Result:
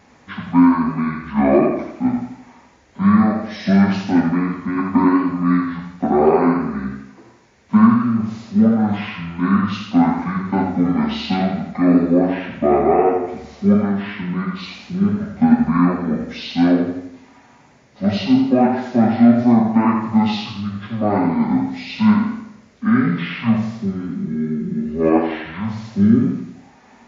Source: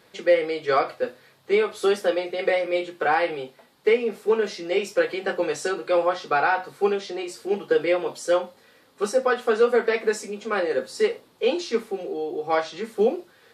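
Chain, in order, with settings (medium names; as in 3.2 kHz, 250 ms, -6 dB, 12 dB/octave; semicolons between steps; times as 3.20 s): speed mistake 15 ips tape played at 7.5 ips; modulated delay 84 ms, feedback 46%, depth 51 cents, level -6 dB; trim +5.5 dB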